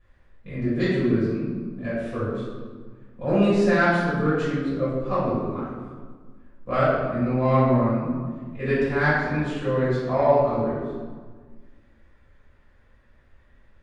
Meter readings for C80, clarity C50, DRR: 1.5 dB, -1.5 dB, -11.5 dB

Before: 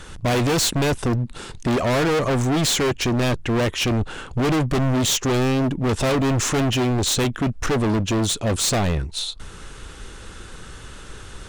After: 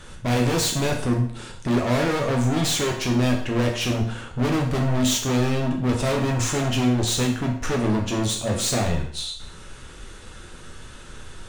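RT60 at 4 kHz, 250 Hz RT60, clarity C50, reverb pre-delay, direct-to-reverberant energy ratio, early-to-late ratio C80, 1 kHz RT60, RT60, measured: 0.55 s, 0.60 s, 6.5 dB, 9 ms, 0.0 dB, 9.5 dB, 0.55 s, 0.55 s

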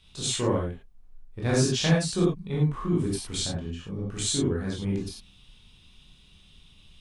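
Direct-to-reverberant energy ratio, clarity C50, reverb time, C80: -5.0 dB, 1.5 dB, no single decay rate, 6.0 dB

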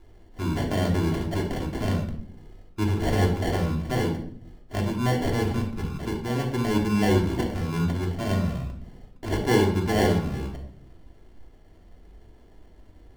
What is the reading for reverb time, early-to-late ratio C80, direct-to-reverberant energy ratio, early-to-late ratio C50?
0.60 s, 10.5 dB, -0.5 dB, 6.0 dB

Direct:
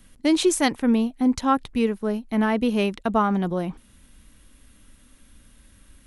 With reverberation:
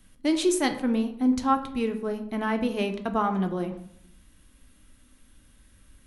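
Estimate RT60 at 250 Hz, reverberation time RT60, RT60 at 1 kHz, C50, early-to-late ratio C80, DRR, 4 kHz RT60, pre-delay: 0.95 s, 0.75 s, 0.70 s, 11.0 dB, 14.0 dB, 6.0 dB, 0.45 s, 3 ms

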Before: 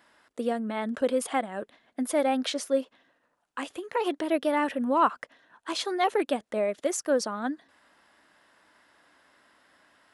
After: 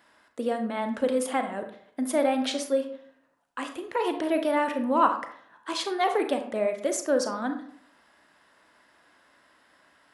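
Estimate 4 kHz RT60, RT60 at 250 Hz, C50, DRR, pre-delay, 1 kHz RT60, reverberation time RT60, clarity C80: 0.35 s, 0.60 s, 8.5 dB, 6.0 dB, 31 ms, 0.60 s, 0.60 s, 12.5 dB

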